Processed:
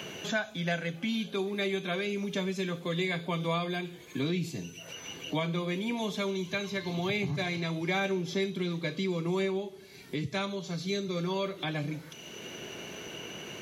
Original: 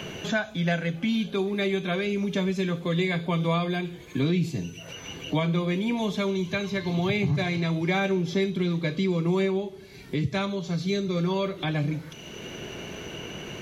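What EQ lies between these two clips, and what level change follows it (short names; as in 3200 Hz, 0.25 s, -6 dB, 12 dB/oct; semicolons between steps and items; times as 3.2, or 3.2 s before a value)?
HPF 200 Hz 6 dB/oct; high shelf 4900 Hz +5.5 dB; -4.0 dB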